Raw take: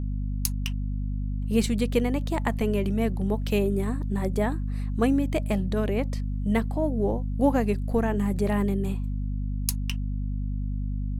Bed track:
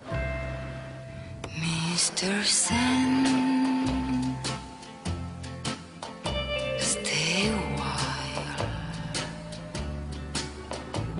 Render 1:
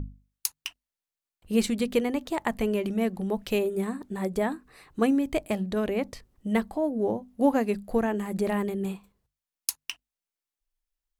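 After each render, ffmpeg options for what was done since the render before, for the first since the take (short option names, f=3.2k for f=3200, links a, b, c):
-af "bandreject=f=50:t=h:w=6,bandreject=f=100:t=h:w=6,bandreject=f=150:t=h:w=6,bandreject=f=200:t=h:w=6,bandreject=f=250:t=h:w=6"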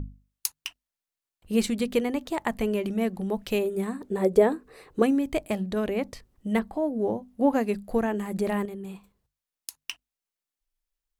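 -filter_complex "[0:a]asettb=1/sr,asplit=3[a][b][c];[a]atrim=end=4.024[d];[b]atrim=start=4.02:end=5.02,asetpts=PTS-STARTPTS,afade=t=in:d=0.004:c=qsin,afade=t=out:st=0.996:d=0.004:c=qsin,equalizer=f=460:t=o:w=0.8:g=13.5[e];[c]atrim=start=5.016[f];[d][e]acrossfade=d=0.004:c1=hsin:c2=qsin[g];[g][f]acrossfade=d=0.004:c1=qsin:c2=hsin,asettb=1/sr,asplit=3[h][i][j];[h]atrim=end=6.594[k];[i]atrim=start=6.59:end=7.53,asetpts=PTS-STARTPTS,afade=t=in:d=0.004:c=qsin,afade=t=out:st=0.936:d=0.004:c=qsin,acrossover=split=3000[l][m];[m]acompressor=threshold=-60dB:ratio=4:attack=1:release=60[n];[l][n]amix=inputs=2:normalize=0[o];[j]atrim=start=7.526[p];[k][o]acrossfade=d=0.004:c1=hsin:c2=qsin[q];[q][p]acrossfade=d=0.004:c1=qsin:c2=hsin,asettb=1/sr,asplit=3[r][s][t];[r]atrim=end=8.654[u];[s]atrim=start=8.65:end=9.78,asetpts=PTS-STARTPTS,afade=t=in:d=0.004:c=qsin,afade=t=out:st=1.126:d=0.004:c=qsin,acompressor=threshold=-34dB:ratio=6:attack=3.2:release=140:knee=1:detection=peak[v];[t]atrim=start=9.776[w];[u][v]acrossfade=d=0.004:c1=hsin:c2=qsin[x];[x][w]acrossfade=d=0.004:c1=qsin:c2=hsin"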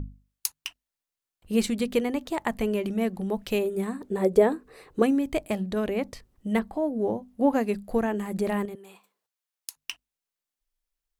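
-filter_complex "[0:a]asettb=1/sr,asplit=3[a][b][c];[a]atrim=end=8.754[d];[b]atrim=start=8.75:end=9.76,asetpts=PTS-STARTPTS,afade=t=in:d=0.004:c=qsin,afade=t=out:st=1.006:d=0.004:c=qsin,highpass=540[e];[c]atrim=start=9.756[f];[d][e]acrossfade=d=0.004:c1=hsin:c2=qsin[g];[g][f]acrossfade=d=0.004:c1=qsin:c2=hsin"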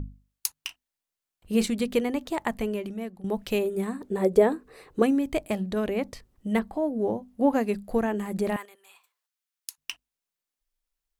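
-filter_complex "[0:a]asettb=1/sr,asplit=3[a][b][c];[a]atrim=end=0.534[d];[b]atrim=start=0.53:end=1.68,asetpts=PTS-STARTPTS,afade=t=in:d=0.004:c=qsin,afade=t=out:st=1.146:d=0.004:c=qsin,asplit=2[e][f];[f]adelay=32,volume=-12dB[g];[e][g]amix=inputs=2:normalize=0,atrim=end_sample=50715[h];[c]atrim=start=1.676[i];[d][h]acrossfade=d=0.004:c1=hsin:c2=qsin[j];[j][i]acrossfade=d=0.004:c1=qsin:c2=hsin,asettb=1/sr,asplit=3[k][l][m];[k]atrim=end=8.564[n];[l]atrim=start=8.56:end=9.78,asetpts=PTS-STARTPTS,afade=t=in:d=0.004:c=qsin,afade=t=out:st=1.216:d=0.004:c=qsin,highpass=1.1k[o];[m]atrim=start=9.776[p];[n][o]acrossfade=d=0.004:c1=hsin:c2=qsin[q];[q][p]acrossfade=d=0.004:c1=qsin:c2=hsin,asplit=2[r][s];[r]atrim=end=3.24,asetpts=PTS-STARTPTS,afade=t=out:st=2.43:d=0.81:silence=0.16788[t];[s]atrim=start=3.24,asetpts=PTS-STARTPTS,afade=t=in:d=0.004:c=hsin:silence=0.16788[u];[t][u]concat=n=2:v=0:a=1"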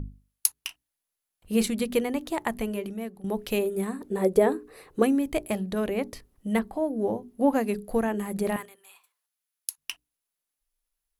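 -af "equalizer=f=11k:w=4.4:g=11.5,bandreject=f=60:t=h:w=6,bandreject=f=120:t=h:w=6,bandreject=f=180:t=h:w=6,bandreject=f=240:t=h:w=6,bandreject=f=300:t=h:w=6,bandreject=f=360:t=h:w=6,bandreject=f=420:t=h:w=6"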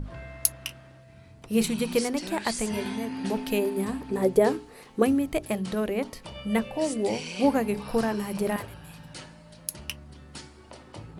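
-filter_complex "[1:a]volume=-11dB[a];[0:a][a]amix=inputs=2:normalize=0"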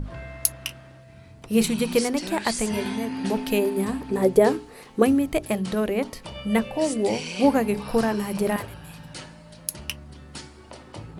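-af "volume=3.5dB,alimiter=limit=-3dB:level=0:latency=1"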